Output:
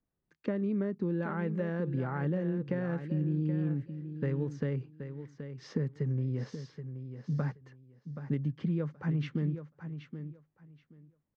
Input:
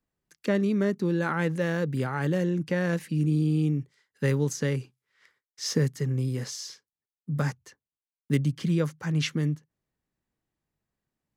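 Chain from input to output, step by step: compression, threshold -27 dBFS, peak gain reduction 9.5 dB; tape spacing loss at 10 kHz 40 dB; on a send: feedback delay 776 ms, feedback 18%, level -10 dB

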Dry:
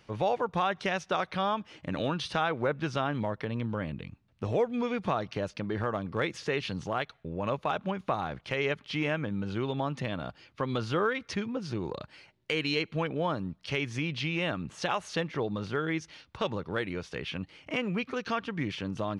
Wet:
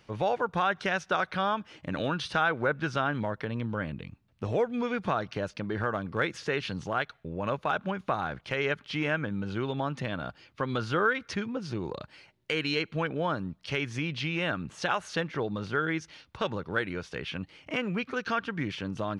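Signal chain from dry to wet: dynamic bell 1.5 kHz, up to +8 dB, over -51 dBFS, Q 4.1

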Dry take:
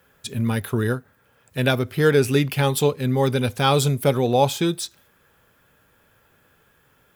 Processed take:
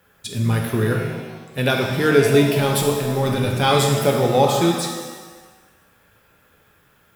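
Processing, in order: 2.56–3.51 s: transient shaper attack -11 dB, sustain +4 dB; pitch-shifted reverb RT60 1.3 s, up +7 st, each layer -8 dB, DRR 1 dB

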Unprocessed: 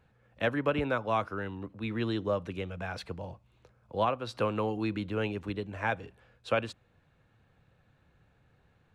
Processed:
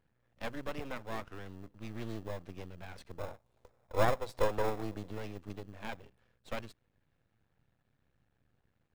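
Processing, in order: 3.18–5.11 s: FFT filter 300 Hz 0 dB, 480 Hz +13 dB, 800 Hz +13 dB, 2 kHz -6 dB, 7.5 kHz +9 dB; half-wave rectifier; in parallel at -9 dB: sample-rate reducer 1.5 kHz, jitter 0%; on the sum: trim -8 dB

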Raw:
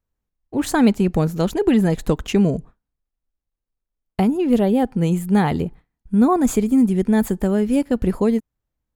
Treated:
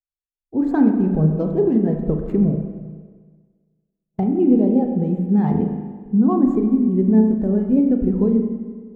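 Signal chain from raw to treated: median filter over 15 samples; hum notches 60/120/180/240/300 Hz; compression, threshold -19 dBFS, peak gain reduction 8.5 dB; spring tank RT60 2.3 s, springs 32/39 ms, chirp 65 ms, DRR 1 dB; spectral contrast expander 1.5:1; trim +3.5 dB

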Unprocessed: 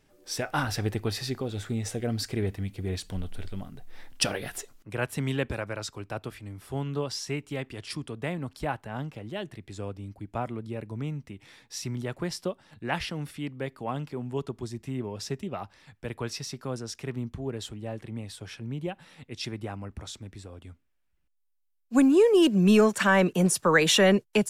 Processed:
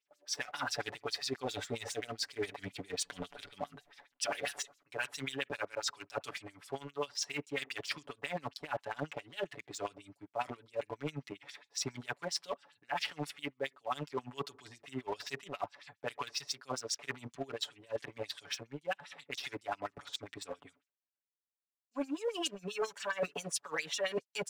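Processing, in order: gate with hold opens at -55 dBFS; LFO band-pass sine 7.4 Hz 570–7200 Hz; comb 7 ms, depth 94%; waveshaping leveller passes 1; reverse; compression 8:1, threshold -43 dBFS, peak gain reduction 25.5 dB; reverse; trim +9 dB

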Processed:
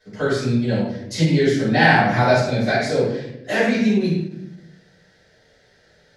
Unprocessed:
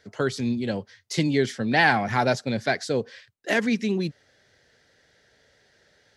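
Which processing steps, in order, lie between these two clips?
simulated room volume 240 m³, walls mixed, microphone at 6.4 m; endings held to a fixed fall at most 180 dB/s; trim -10.5 dB

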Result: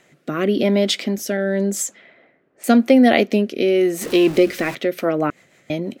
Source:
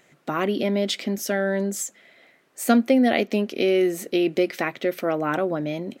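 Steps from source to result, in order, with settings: 4.01–4.75 s: jump at every zero crossing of -32.5 dBFS; 5.30–5.70 s: room tone; rotary cabinet horn 0.9 Hz, later 6.3 Hz, at 4.37 s; 1.37–2.64 s: level-controlled noise filter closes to 1.3 kHz, open at -26.5 dBFS; trim +6.5 dB

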